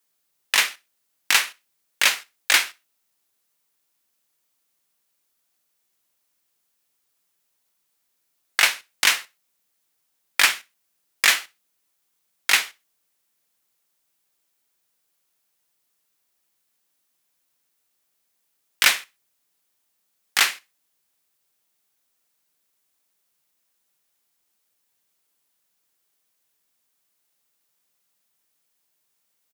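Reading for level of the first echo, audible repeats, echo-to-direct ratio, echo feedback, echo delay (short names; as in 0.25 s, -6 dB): -23.5 dB, 2, -23.0 dB, 31%, 63 ms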